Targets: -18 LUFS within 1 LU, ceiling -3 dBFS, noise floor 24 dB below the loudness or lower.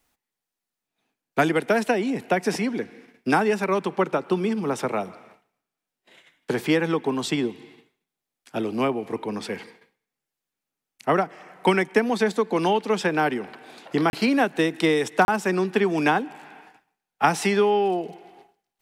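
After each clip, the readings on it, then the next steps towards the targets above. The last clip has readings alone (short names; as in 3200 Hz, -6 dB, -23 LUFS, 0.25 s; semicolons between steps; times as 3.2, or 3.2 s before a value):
dropouts 2; longest dropout 31 ms; loudness -24.0 LUFS; peak -4.0 dBFS; loudness target -18.0 LUFS
-> interpolate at 14.1/15.25, 31 ms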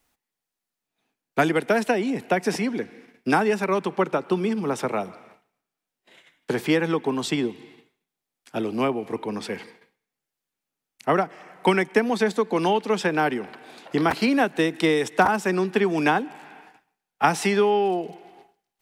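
dropouts 0; loudness -23.5 LUFS; peak -4.0 dBFS; loudness target -18.0 LUFS
-> gain +5.5 dB; limiter -3 dBFS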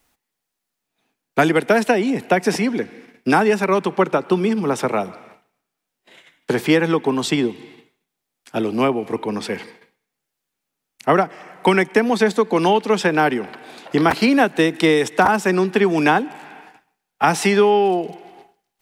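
loudness -18.5 LUFS; peak -3.0 dBFS; noise floor -81 dBFS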